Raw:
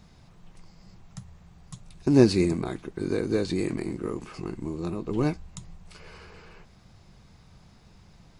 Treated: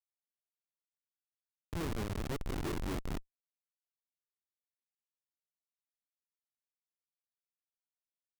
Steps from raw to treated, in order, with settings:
delay that plays each chunk backwards 314 ms, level −4.5 dB
source passing by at 0:02.56, 58 m/s, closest 13 metres
comparator with hysteresis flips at −28 dBFS
level +1 dB

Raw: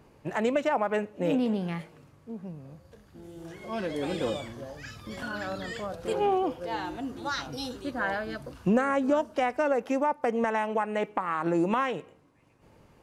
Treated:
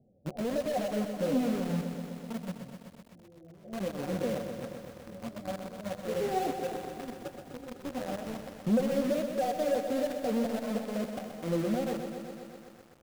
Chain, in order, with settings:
variable-slope delta modulation 32 kbit/s
Chebyshev low-pass with heavy ripple 770 Hz, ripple 9 dB
flanger 1.5 Hz, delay 7.4 ms, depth 6.7 ms, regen +20%
in parallel at −10 dB: log-companded quantiser 2 bits
on the sum: feedback echo at a low word length 126 ms, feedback 80%, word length 9 bits, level −8 dB

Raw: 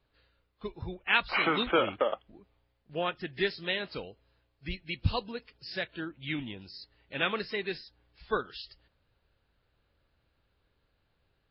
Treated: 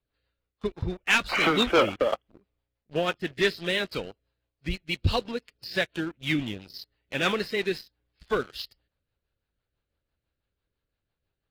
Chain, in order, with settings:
leveller curve on the samples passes 3
rotating-speaker cabinet horn 6 Hz
level −2 dB

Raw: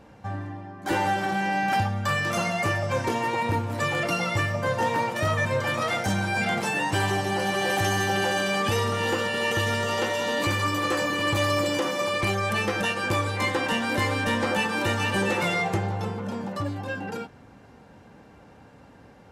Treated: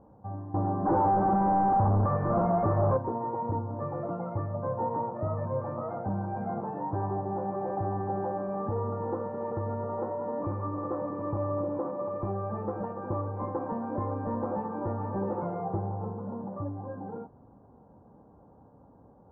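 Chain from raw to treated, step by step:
0:00.54–0:02.97: leveller curve on the samples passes 5
Butterworth low-pass 1,100 Hz 36 dB per octave
level −5 dB

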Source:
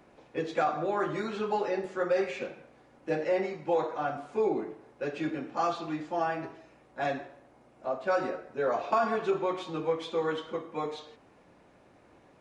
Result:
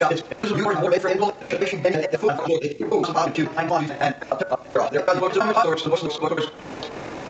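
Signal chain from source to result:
slices reordered back to front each 184 ms, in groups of 4
high-shelf EQ 3,600 Hz +11 dB
in parallel at 0 dB: upward compression, threshold −29 dBFS
on the sum: pitch vibrato 1.8 Hz 37 cents
hum removal 113.7 Hz, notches 17
granular cloud 100 ms, spray 17 ms, pitch spread up and down by 0 semitones
dynamic equaliser 140 Hz, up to +6 dB, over −54 dBFS, Q 3.9
on a send: repeating echo 130 ms, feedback 58%, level −23 dB
on the sum: gain on a spectral selection 0:04.18–0:04.80, 500–1,900 Hz −18 dB
tempo change 1.7×
downsampling to 16,000 Hz
multiband upward and downward compressor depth 40%
level +4.5 dB

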